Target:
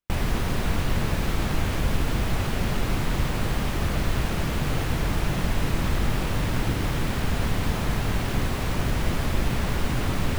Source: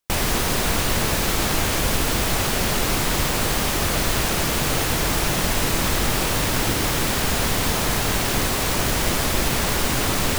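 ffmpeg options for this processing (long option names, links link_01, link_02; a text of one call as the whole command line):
ffmpeg -i in.wav -af "bass=frequency=250:gain=8,treble=frequency=4000:gain=-9,volume=-7dB" out.wav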